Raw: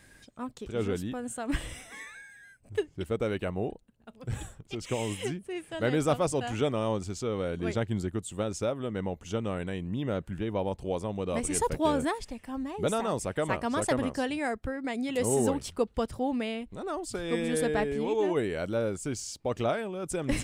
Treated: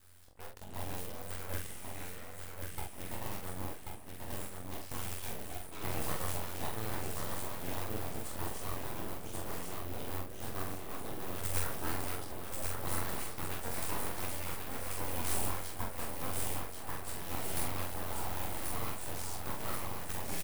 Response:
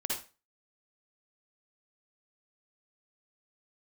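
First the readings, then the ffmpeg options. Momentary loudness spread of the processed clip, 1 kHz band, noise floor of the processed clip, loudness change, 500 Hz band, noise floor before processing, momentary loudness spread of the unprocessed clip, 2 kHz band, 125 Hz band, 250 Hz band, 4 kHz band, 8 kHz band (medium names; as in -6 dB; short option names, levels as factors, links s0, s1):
8 LU, -6.5 dB, -45 dBFS, -8.0 dB, -15.0 dB, -58 dBFS, 10 LU, -6.5 dB, -7.0 dB, -14.0 dB, -4.5 dB, -3.0 dB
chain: -filter_complex "[0:a]asplit=2[s0][s1];[s1]aeval=exprs='(mod(29.9*val(0)+1,2)-1)/29.9':c=same,volume=0.316[s2];[s0][s2]amix=inputs=2:normalize=0,aexciter=amount=7:drive=5.6:freq=9500,aeval=exprs='val(0)*sin(2*PI*45*n/s)':c=same,asplit=2[s3][s4];[s4]adelay=332.4,volume=0.2,highshelf=f=4000:g=-7.48[s5];[s3][s5]amix=inputs=2:normalize=0,flanger=delay=20:depth=7:speed=1.4,asplit=2[s6][s7];[s7]aecho=0:1:1086|2172|3258|4344|5430|6516:0.631|0.278|0.122|0.0537|0.0236|0.0104[s8];[s6][s8]amix=inputs=2:normalize=0,aeval=exprs='abs(val(0))':c=same,asplit=2[s9][s10];[s10]adelay=45,volume=0.631[s11];[s9][s11]amix=inputs=2:normalize=0,volume=0.596"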